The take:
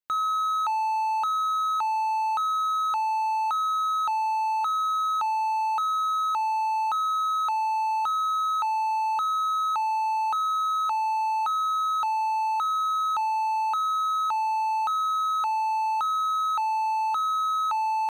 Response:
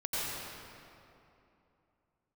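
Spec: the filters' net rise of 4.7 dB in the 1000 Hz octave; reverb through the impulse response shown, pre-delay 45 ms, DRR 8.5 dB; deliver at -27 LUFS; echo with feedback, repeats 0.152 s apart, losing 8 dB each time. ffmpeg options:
-filter_complex "[0:a]equalizer=f=1k:t=o:g=6,aecho=1:1:152|304|456|608|760:0.398|0.159|0.0637|0.0255|0.0102,asplit=2[a][b];[1:a]atrim=start_sample=2205,adelay=45[c];[b][c]afir=irnorm=-1:irlink=0,volume=-15.5dB[d];[a][d]amix=inputs=2:normalize=0,volume=-5.5dB"

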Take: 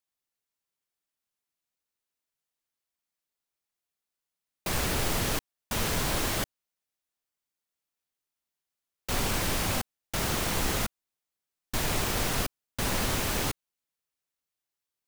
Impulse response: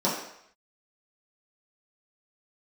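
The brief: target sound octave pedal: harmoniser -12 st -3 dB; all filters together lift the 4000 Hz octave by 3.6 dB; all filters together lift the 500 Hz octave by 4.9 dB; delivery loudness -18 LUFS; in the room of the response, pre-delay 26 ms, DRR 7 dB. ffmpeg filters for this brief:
-filter_complex "[0:a]equalizer=f=500:t=o:g=6,equalizer=f=4k:t=o:g=4.5,asplit=2[a][b];[1:a]atrim=start_sample=2205,adelay=26[c];[b][c]afir=irnorm=-1:irlink=0,volume=-20dB[d];[a][d]amix=inputs=2:normalize=0,asplit=2[e][f];[f]asetrate=22050,aresample=44100,atempo=2,volume=-3dB[g];[e][g]amix=inputs=2:normalize=0,volume=7.5dB"

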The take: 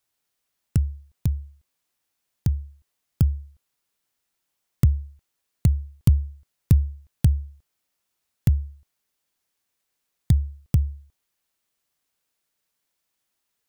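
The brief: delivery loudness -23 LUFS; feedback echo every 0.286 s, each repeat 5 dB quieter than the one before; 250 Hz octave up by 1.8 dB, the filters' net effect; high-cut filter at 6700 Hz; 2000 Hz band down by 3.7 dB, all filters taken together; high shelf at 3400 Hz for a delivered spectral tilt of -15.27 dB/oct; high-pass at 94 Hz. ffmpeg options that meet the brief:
-af "highpass=94,lowpass=6.7k,equalizer=f=250:t=o:g=4,equalizer=f=2k:t=o:g=-7,highshelf=f=3.4k:g=6.5,aecho=1:1:286|572|858|1144|1430|1716|2002:0.562|0.315|0.176|0.0988|0.0553|0.031|0.0173,volume=5dB"

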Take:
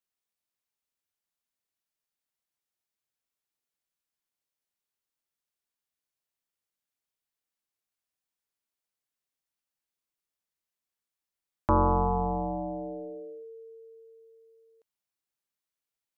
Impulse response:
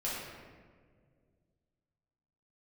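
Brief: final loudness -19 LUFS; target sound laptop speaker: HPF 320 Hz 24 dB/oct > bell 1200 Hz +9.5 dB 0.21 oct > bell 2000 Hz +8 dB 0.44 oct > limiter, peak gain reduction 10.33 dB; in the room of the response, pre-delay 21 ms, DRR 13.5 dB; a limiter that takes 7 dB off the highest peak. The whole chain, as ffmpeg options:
-filter_complex "[0:a]alimiter=limit=-24dB:level=0:latency=1,asplit=2[a][b];[1:a]atrim=start_sample=2205,adelay=21[c];[b][c]afir=irnorm=-1:irlink=0,volume=-18.5dB[d];[a][d]amix=inputs=2:normalize=0,highpass=f=320:w=0.5412,highpass=f=320:w=1.3066,equalizer=f=1.2k:t=o:w=0.21:g=9.5,equalizer=f=2k:t=o:w=0.44:g=8,volume=21.5dB,alimiter=limit=-8dB:level=0:latency=1"

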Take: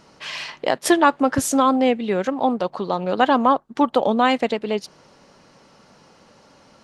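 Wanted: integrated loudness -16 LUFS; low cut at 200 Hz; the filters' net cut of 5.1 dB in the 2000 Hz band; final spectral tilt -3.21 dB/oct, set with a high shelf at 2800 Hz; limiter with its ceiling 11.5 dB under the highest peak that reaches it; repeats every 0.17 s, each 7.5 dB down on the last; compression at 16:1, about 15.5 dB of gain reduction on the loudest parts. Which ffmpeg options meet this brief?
-af "highpass=200,equalizer=f=2k:t=o:g=-8.5,highshelf=f=2.8k:g=4,acompressor=threshold=-27dB:ratio=16,alimiter=level_in=1.5dB:limit=-24dB:level=0:latency=1,volume=-1.5dB,aecho=1:1:170|340|510|680|850:0.422|0.177|0.0744|0.0312|0.0131,volume=19dB"

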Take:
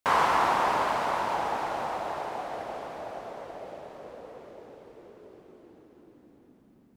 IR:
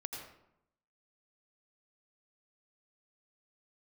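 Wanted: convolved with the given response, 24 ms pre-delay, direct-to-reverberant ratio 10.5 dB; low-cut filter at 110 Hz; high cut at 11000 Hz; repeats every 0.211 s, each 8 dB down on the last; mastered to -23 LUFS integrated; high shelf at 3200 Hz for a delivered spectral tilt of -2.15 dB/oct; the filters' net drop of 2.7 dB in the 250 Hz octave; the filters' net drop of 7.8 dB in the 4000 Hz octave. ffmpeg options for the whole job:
-filter_complex "[0:a]highpass=110,lowpass=11k,equalizer=f=250:t=o:g=-3.5,highshelf=f=3.2k:g=-4.5,equalizer=f=4k:t=o:g=-7.5,aecho=1:1:211|422|633|844|1055:0.398|0.159|0.0637|0.0255|0.0102,asplit=2[a][b];[1:a]atrim=start_sample=2205,adelay=24[c];[b][c]afir=irnorm=-1:irlink=0,volume=-10dB[d];[a][d]amix=inputs=2:normalize=0,volume=6dB"

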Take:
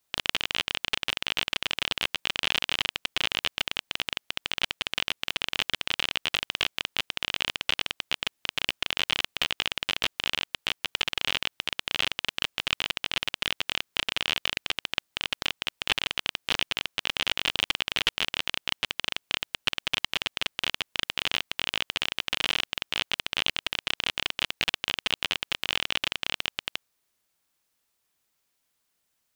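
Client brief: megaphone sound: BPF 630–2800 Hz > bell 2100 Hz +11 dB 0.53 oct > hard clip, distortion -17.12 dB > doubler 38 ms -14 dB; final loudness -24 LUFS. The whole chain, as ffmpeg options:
-filter_complex "[0:a]highpass=630,lowpass=2.8k,equalizer=f=2.1k:t=o:w=0.53:g=11,asoftclip=type=hard:threshold=-10.5dB,asplit=2[a][b];[b]adelay=38,volume=-14dB[c];[a][c]amix=inputs=2:normalize=0,volume=3.5dB"

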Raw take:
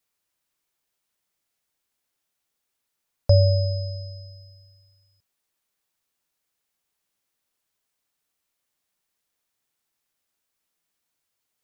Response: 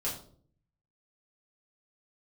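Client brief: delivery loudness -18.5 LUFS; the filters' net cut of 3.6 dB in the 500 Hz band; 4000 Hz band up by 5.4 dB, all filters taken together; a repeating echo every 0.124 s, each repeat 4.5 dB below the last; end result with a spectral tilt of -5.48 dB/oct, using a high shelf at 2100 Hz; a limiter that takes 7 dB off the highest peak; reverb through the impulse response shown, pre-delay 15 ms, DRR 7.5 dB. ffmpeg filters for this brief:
-filter_complex "[0:a]equalizer=f=500:t=o:g=-4.5,highshelf=f=2.1k:g=3.5,equalizer=f=4k:t=o:g=3.5,alimiter=limit=-13.5dB:level=0:latency=1,aecho=1:1:124|248|372|496|620|744|868|992|1116:0.596|0.357|0.214|0.129|0.0772|0.0463|0.0278|0.0167|0.01,asplit=2[a][b];[1:a]atrim=start_sample=2205,adelay=15[c];[b][c]afir=irnorm=-1:irlink=0,volume=-11.5dB[d];[a][d]amix=inputs=2:normalize=0,volume=5dB"

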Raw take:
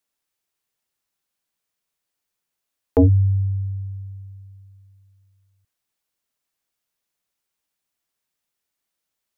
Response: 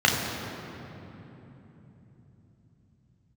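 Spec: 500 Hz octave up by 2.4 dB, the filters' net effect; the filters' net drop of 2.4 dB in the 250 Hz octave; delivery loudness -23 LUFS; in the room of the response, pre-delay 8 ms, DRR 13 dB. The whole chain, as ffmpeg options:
-filter_complex "[0:a]equalizer=f=250:t=o:g=-3.5,equalizer=f=500:t=o:g=3.5,asplit=2[a][b];[1:a]atrim=start_sample=2205,adelay=8[c];[b][c]afir=irnorm=-1:irlink=0,volume=-31.5dB[d];[a][d]amix=inputs=2:normalize=0,volume=-0.5dB"

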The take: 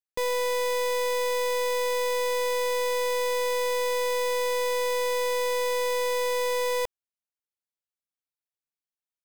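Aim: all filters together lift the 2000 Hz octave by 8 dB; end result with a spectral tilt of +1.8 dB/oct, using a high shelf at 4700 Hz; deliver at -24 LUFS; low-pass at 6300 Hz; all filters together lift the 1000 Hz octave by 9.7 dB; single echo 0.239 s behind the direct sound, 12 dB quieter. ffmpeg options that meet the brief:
-af "lowpass=6.3k,equalizer=f=1k:t=o:g=8.5,equalizer=f=2k:t=o:g=7.5,highshelf=f=4.7k:g=-4.5,aecho=1:1:239:0.251,volume=-1.5dB"

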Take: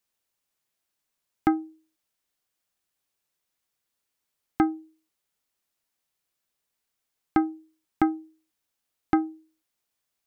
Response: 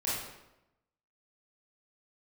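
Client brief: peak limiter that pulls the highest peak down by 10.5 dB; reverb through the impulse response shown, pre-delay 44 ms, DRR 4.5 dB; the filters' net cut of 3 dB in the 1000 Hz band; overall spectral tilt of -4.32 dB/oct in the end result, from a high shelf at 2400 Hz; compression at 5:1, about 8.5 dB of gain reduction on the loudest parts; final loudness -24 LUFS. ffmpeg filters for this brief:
-filter_complex "[0:a]equalizer=f=1k:t=o:g=-3.5,highshelf=f=2.4k:g=-5,acompressor=threshold=-27dB:ratio=5,alimiter=limit=-23.5dB:level=0:latency=1,asplit=2[a][b];[1:a]atrim=start_sample=2205,adelay=44[c];[b][c]afir=irnorm=-1:irlink=0,volume=-11dB[d];[a][d]amix=inputs=2:normalize=0,volume=15dB"

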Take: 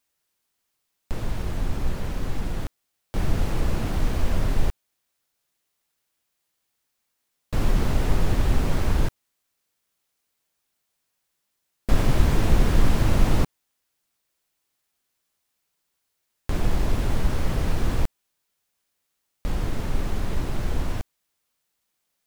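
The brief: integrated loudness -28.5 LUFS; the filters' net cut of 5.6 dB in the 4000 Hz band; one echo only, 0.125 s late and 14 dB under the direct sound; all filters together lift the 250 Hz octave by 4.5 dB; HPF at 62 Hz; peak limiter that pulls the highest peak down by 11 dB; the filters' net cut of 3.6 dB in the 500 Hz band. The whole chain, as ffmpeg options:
-af "highpass=62,equalizer=f=250:t=o:g=8,equalizer=f=500:t=o:g=-8,equalizer=f=4k:t=o:g=-7.5,alimiter=limit=-20.5dB:level=0:latency=1,aecho=1:1:125:0.2,volume=2.5dB"

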